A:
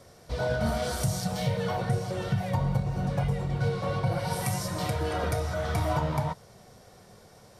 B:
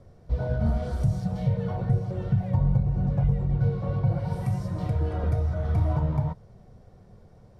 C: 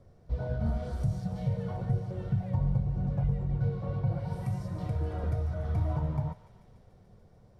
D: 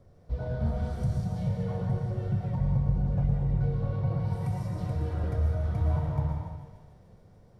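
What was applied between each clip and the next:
tilt -4 dB/oct; gain -7.5 dB
thinning echo 0.145 s, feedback 84%, high-pass 1200 Hz, level -13 dB; gain -5.5 dB
plate-style reverb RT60 1.2 s, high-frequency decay 0.95×, pre-delay 0.1 s, DRR 2 dB

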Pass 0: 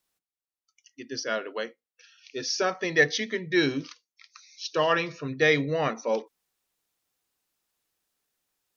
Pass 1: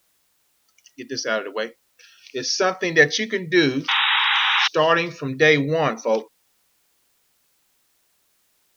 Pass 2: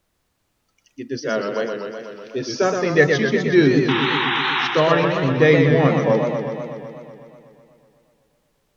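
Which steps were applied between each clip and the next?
requantised 12-bit, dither triangular; painted sound noise, 3.88–4.68, 770–3900 Hz -25 dBFS; gain +6 dB
tilt -3 dB/oct; warbling echo 0.124 s, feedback 73%, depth 157 cents, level -5.5 dB; gain -1 dB

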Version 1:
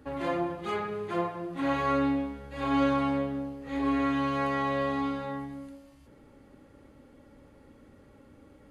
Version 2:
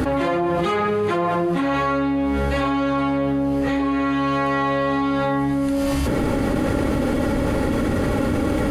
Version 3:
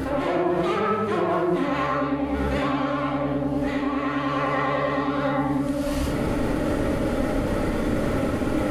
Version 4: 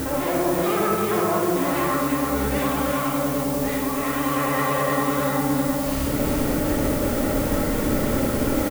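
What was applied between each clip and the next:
fast leveller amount 100%; gain +2.5 dB
vibrato 9.8 Hz 95 cents; digital reverb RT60 0.7 s, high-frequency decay 0.45×, pre-delay 5 ms, DRR -1 dB; gain -6.5 dB
added noise blue -35 dBFS; echo 0.339 s -5 dB

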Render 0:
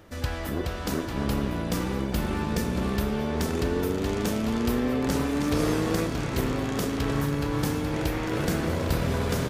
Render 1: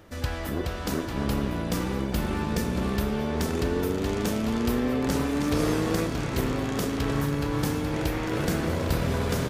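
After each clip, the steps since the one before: nothing audible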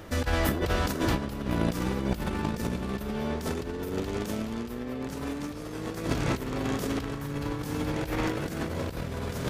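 negative-ratio compressor -31 dBFS, ratio -0.5; gain +2 dB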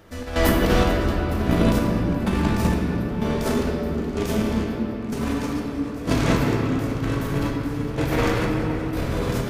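step gate "...xxxx." 126 bpm -12 dB; reverb RT60 3.6 s, pre-delay 4 ms, DRR -1.5 dB; gain +5.5 dB

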